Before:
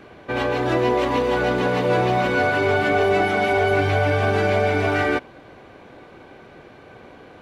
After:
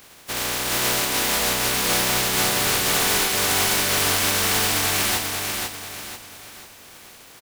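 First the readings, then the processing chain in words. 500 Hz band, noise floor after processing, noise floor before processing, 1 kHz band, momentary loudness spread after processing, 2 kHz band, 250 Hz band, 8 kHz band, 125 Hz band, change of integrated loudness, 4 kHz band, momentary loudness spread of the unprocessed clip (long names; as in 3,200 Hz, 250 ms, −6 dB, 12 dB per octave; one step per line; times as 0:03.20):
−10.0 dB, −47 dBFS, −46 dBFS, −4.5 dB, 13 LU, −1.5 dB, −7.0 dB, can't be measured, −8.0 dB, +0.5 dB, +11.5 dB, 4 LU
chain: compressing power law on the bin magnitudes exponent 0.16
on a send: repeating echo 491 ms, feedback 39%, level −4 dB
on the sum: level −3 dB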